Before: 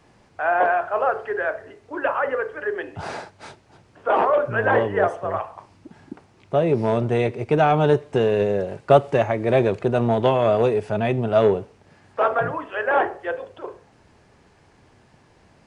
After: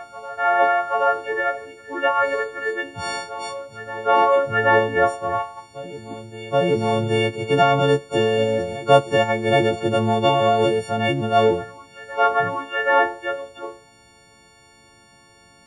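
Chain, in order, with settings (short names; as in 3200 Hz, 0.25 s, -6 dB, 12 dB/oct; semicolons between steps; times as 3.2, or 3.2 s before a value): frequency quantiser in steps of 4 st; reverse echo 0.777 s -15.5 dB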